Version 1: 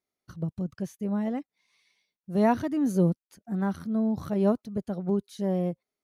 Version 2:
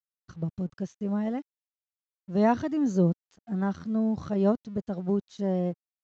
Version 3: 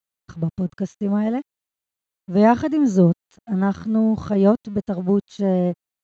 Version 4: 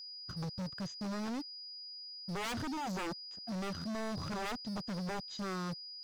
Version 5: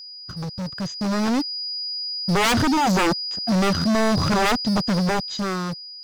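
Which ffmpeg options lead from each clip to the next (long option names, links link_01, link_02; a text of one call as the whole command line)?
ffmpeg -i in.wav -af "bandreject=frequency=2300:width=11,aresample=16000,aeval=exprs='sgn(val(0))*max(abs(val(0))-0.00126,0)':channel_layout=same,aresample=44100" out.wav
ffmpeg -i in.wav -af "bandreject=frequency=5300:width=7.6,volume=8dB" out.wav
ffmpeg -i in.wav -filter_complex "[0:a]acrossover=split=2400[link_01][link_02];[link_01]aeval=exprs='0.0944*(abs(mod(val(0)/0.0944+3,4)-2)-1)':channel_layout=same[link_03];[link_03][link_02]amix=inputs=2:normalize=0,aeval=exprs='val(0)+0.0112*sin(2*PI*4900*n/s)':channel_layout=same,asoftclip=type=hard:threshold=-30.5dB,volume=-6dB" out.wav
ffmpeg -i in.wav -af "dynaudnorm=framelen=200:gausssize=11:maxgain=10.5dB,volume=8.5dB" out.wav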